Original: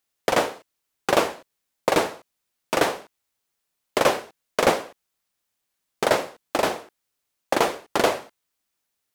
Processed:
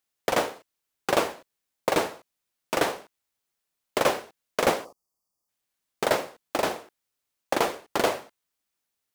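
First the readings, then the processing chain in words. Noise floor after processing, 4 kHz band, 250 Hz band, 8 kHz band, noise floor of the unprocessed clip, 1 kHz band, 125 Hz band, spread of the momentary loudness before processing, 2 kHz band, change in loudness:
−83 dBFS, −3.5 dB, −3.5 dB, −3.0 dB, −79 dBFS, −3.5 dB, −3.5 dB, 9 LU, −3.5 dB, −3.5 dB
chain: time-frequency box erased 0:04.85–0:05.48, 1,300–4,400 Hz
floating-point word with a short mantissa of 2 bits
level −3.5 dB

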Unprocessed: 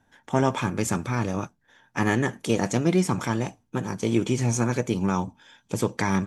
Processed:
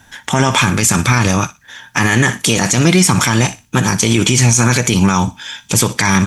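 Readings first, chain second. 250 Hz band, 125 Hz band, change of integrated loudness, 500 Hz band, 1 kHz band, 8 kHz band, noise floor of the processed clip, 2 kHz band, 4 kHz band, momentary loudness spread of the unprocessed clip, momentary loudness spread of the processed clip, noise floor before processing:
+10.0 dB, +13.0 dB, +12.5 dB, +6.5 dB, +11.5 dB, +20.5 dB, −47 dBFS, +16.0 dB, +20.5 dB, 9 LU, 7 LU, −68 dBFS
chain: guitar amp tone stack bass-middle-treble 5-5-5
feedback echo with a high-pass in the loop 60 ms, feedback 24%, high-pass 1,200 Hz, level −18 dB
boost into a limiter +34 dB
level −1 dB

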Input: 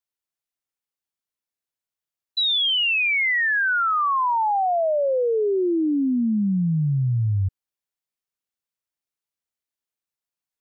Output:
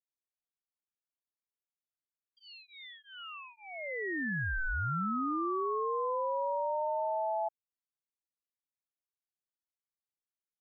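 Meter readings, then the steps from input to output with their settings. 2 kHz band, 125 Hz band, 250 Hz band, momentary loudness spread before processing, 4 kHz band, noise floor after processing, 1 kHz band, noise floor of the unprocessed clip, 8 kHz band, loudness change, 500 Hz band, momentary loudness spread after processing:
−15.0 dB, −18.5 dB, −16.0 dB, 5 LU, −29.5 dB, below −85 dBFS, −10.0 dB, below −85 dBFS, can't be measured, −12.5 dB, −11.0 dB, 16 LU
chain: Savitzky-Golay smoothing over 65 samples
ring modulation 760 Hz
level −8.5 dB

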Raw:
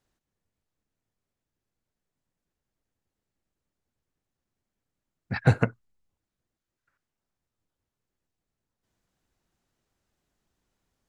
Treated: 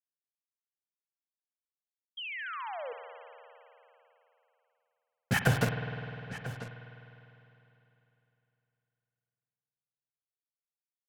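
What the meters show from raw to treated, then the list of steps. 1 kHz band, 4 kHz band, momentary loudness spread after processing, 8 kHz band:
+1.5 dB, +9.5 dB, 22 LU, can't be measured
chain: hearing-aid frequency compression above 2,700 Hz 4 to 1
brickwall limiter −14 dBFS, peak gain reduction 9.5 dB
bit-depth reduction 6 bits, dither none
parametric band 320 Hz −10 dB 0.21 octaves
downward compressor, threshold −24 dBFS, peak gain reduction 5 dB
parametric band 78 Hz −4 dB
single-tap delay 991 ms −14 dB
low-pass that shuts in the quiet parts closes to 950 Hz, open at −39.5 dBFS
sound drawn into the spectrogram fall, 0:02.17–0:02.93, 450–3,300 Hz −44 dBFS
mains-hum notches 50/100/150/200 Hz
spring reverb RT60 3.2 s, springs 50 ms, chirp 65 ms, DRR 5.5 dB
level +4.5 dB

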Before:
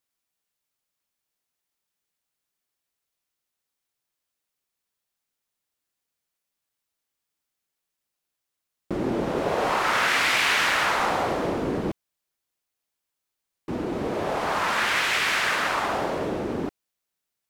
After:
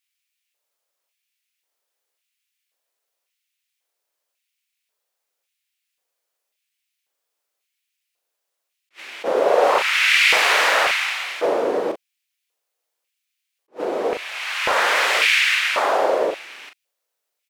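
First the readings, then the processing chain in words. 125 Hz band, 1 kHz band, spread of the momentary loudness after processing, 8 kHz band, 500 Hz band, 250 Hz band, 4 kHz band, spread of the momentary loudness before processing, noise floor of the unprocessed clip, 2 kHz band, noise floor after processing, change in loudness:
below −15 dB, +3.0 dB, 14 LU, +4.5 dB, +7.0 dB, −5.0 dB, +6.5 dB, 11 LU, −84 dBFS, +6.0 dB, −80 dBFS, +6.0 dB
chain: auto-filter high-pass square 0.92 Hz 510–2,400 Hz
double-tracking delay 39 ms −6.5 dB
level that may rise only so fast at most 390 dB per second
level +3 dB

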